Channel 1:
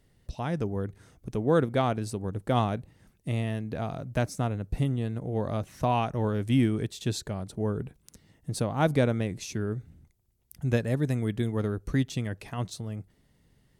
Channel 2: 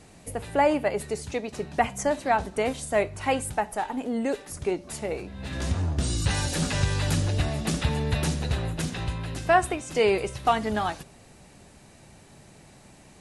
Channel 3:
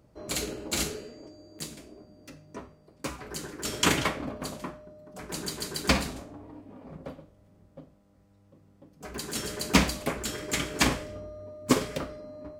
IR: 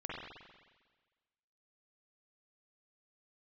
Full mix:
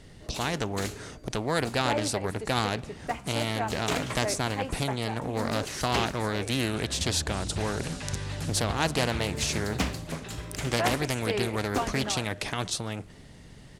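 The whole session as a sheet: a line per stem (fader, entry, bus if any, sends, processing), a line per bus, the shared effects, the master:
+0.5 dB, 0.00 s, send -23.5 dB, LPF 7100 Hz 12 dB/oct; high shelf 5200 Hz +6.5 dB; spectral compressor 2:1
-9.0 dB, 1.30 s, no send, dry
-8.0 dB, 0.05 s, no send, dry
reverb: on, RT60 1.4 s, pre-delay 44 ms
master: Doppler distortion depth 0.42 ms

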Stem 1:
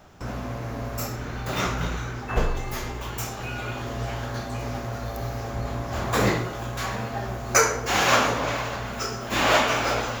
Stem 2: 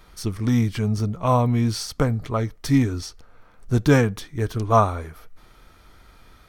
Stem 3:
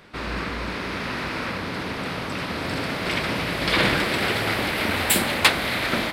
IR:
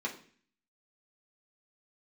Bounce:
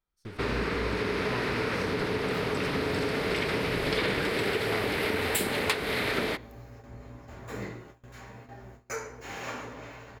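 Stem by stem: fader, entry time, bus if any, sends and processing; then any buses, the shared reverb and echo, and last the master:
-18.0 dB, 1.35 s, send -6.5 dB, dry
-16.5 dB, 0.00 s, no send, dry
+1.5 dB, 0.25 s, send -18 dB, bell 430 Hz +11.5 dB 0.26 oct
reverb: on, RT60 0.45 s, pre-delay 3 ms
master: gate with hold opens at -38 dBFS; compressor 5:1, threshold -26 dBFS, peak gain reduction 14.5 dB

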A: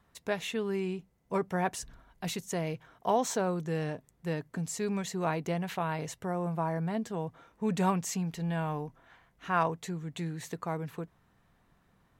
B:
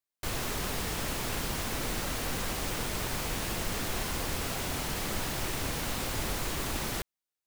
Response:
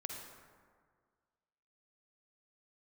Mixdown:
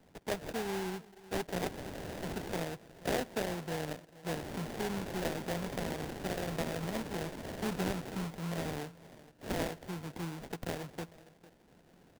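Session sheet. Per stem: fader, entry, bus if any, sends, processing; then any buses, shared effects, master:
-4.5 dB, 0.00 s, send -15.5 dB, echo send -23 dB, treble ducked by the level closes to 1100 Hz, closed at -25.5 dBFS
-6.5 dB, 1.25 s, muted 2.64–4.33, no send, echo send -19.5 dB, limiter -26.5 dBFS, peak gain reduction 7.5 dB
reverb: on, RT60 1.8 s, pre-delay 43 ms
echo: echo 0.452 s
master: HPF 180 Hz 12 dB/oct; sample-rate reducer 1200 Hz, jitter 20%; three-band squash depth 40%

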